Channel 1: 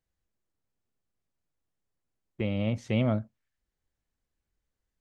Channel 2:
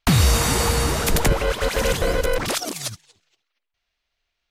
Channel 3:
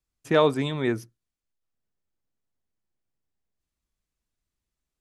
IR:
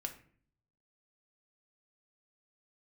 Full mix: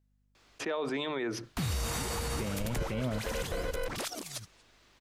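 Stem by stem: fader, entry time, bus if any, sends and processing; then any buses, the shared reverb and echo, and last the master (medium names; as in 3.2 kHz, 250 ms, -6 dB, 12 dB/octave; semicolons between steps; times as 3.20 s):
-2.0 dB, 0.00 s, no send, hum 50 Hz, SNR 34 dB
-12.0 dB, 1.50 s, no send, none
-10.5 dB, 0.35 s, no send, three-band isolator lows -18 dB, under 300 Hz, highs -20 dB, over 5.4 kHz; hum notches 50/100/150 Hz; level flattener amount 70%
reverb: none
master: peak limiter -24.5 dBFS, peak gain reduction 9.5 dB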